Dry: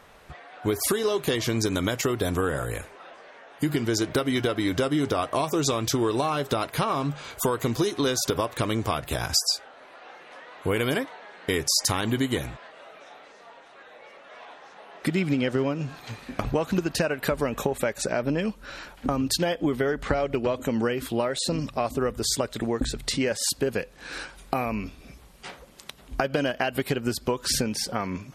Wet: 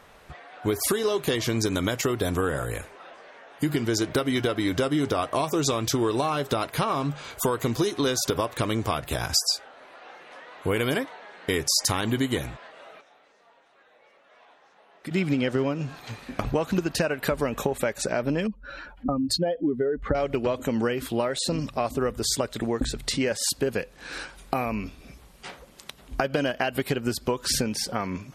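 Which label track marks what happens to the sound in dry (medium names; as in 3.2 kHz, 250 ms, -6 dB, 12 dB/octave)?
13.010000	15.110000	gain -10.5 dB
18.470000	20.150000	spectral contrast enhancement exponent 1.9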